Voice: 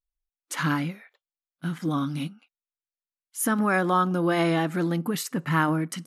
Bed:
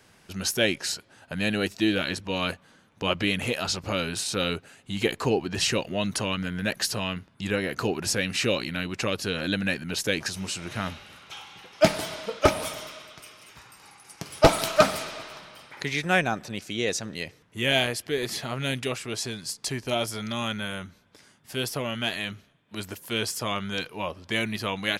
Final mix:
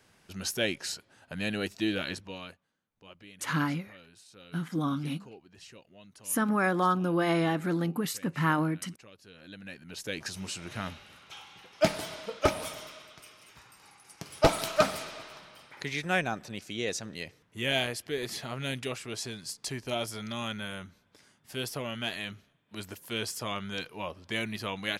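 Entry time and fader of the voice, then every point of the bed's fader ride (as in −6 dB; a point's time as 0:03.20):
2.90 s, −3.5 dB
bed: 0:02.13 −6 dB
0:02.75 −26 dB
0:09.20 −26 dB
0:10.35 −5.5 dB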